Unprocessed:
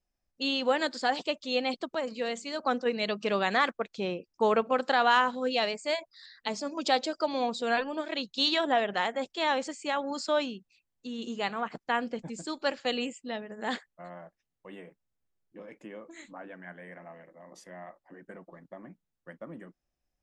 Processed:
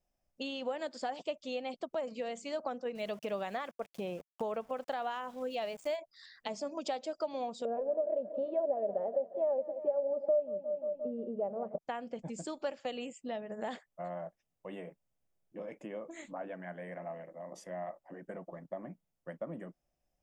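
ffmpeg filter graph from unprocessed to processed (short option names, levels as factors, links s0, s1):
-filter_complex "[0:a]asettb=1/sr,asplit=3[s0][s1][s2];[s0]atrim=end=2.954[s3];[s1]atrim=start=2.95:end=5.96,asetpts=PTS-STARTPTS,afade=t=in:d=0.004:c=qsin,afade=t=out:st=3.006:d=0.004:c=qsin,equalizer=f=79:t=o:w=0.43:g=5,aeval=exprs='val(0)*gte(abs(val(0)),0.00668)':c=same[s4];[s2]atrim=start=5.956[s5];[s3][s4]acrossfade=d=0.004:c1=hsin:c2=qsin[s6];[s6][s5]acrossfade=d=0.004:c1=qsin:c2=hsin,asettb=1/sr,asplit=3[s7][s8][s9];[s7]atrim=end=7.654[s10];[s8]atrim=start=7.65:end=11.78,asetpts=PTS-STARTPTS,afade=t=in:d=0.004:c=qsin,afade=t=out:st=4.126:d=0.004:c=qsin,lowpass=f=550:t=q:w=6,aecho=1:1:5:0.45,atrim=end_sample=182133,aecho=1:1:177|354|531|708|885:0.168|0.094|0.0526|0.0295|0.0165,atrim=end_sample=182133[s11];[s9]atrim=start=11.776[s12];[s10][s11]acrossfade=d=0.004:c1=hsin:c2=qsin[s13];[s13][s12]acrossfade=d=0.004:c1=qsin:c2=hsin,equalizer=f=4100:w=5.5:g=-8,acompressor=threshold=0.01:ratio=4,equalizer=f=160:t=o:w=0.67:g=4,equalizer=f=630:t=o:w=0.67:g=8,equalizer=f=1600:t=o:w=0.67:g=-3"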